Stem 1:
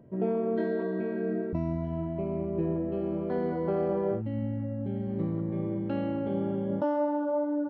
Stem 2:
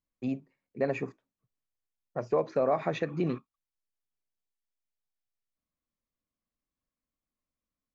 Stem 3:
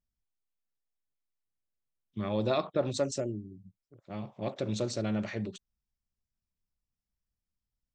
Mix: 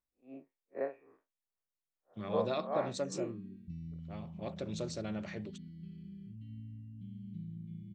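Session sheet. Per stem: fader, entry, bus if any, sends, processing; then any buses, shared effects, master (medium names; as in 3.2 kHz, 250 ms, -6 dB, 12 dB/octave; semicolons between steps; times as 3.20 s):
-8.5 dB, 2.15 s, no send, elliptic band-stop 190–3000 Hz, stop band 60 dB
+2.0 dB, 0.00 s, no send, spectral blur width 95 ms; three-band isolator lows -19 dB, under 330 Hz, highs -24 dB, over 2.3 kHz; logarithmic tremolo 2.5 Hz, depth 24 dB
-6.0 dB, 0.00 s, no send, none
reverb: none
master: bass shelf 180 Hz -4.5 dB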